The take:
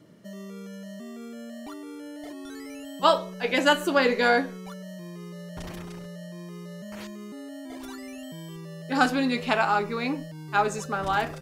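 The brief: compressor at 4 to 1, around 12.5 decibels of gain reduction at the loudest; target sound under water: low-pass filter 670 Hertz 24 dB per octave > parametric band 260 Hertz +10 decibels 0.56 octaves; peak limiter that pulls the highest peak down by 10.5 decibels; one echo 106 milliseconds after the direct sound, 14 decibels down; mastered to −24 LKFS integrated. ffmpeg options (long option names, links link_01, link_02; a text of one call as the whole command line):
ffmpeg -i in.wav -af "acompressor=threshold=-30dB:ratio=4,alimiter=level_in=1.5dB:limit=-24dB:level=0:latency=1,volume=-1.5dB,lowpass=frequency=670:width=0.5412,lowpass=frequency=670:width=1.3066,equalizer=frequency=260:width_type=o:width=0.56:gain=10,aecho=1:1:106:0.2,volume=10dB" out.wav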